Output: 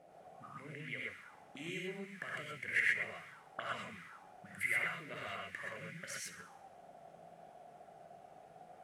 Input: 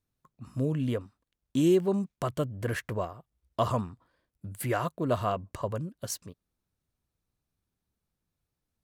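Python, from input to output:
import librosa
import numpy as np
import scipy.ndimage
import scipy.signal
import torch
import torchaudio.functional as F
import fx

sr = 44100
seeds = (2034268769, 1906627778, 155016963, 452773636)

p1 = fx.dmg_noise_colour(x, sr, seeds[0], colour='pink', level_db=-56.0)
p2 = fx.over_compress(p1, sr, threshold_db=-34.0, ratio=-1.0)
p3 = p1 + F.gain(torch.from_numpy(p2), -2.0).numpy()
p4 = fx.auto_wah(p3, sr, base_hz=600.0, top_hz=2100.0, q=12.0, full_db=-27.5, direction='up')
p5 = fx.graphic_eq_15(p4, sr, hz=(160, 1000, 4000, 10000), db=(11, -12, -4, 9))
p6 = p5 + fx.echo_wet_highpass(p5, sr, ms=67, feedback_pct=56, hz=2000.0, wet_db=-14.0, dry=0)
p7 = fx.rev_gated(p6, sr, seeds[1], gate_ms=150, shape='rising', drr_db=-3.5)
y = F.gain(torch.from_numpy(p7), 9.0).numpy()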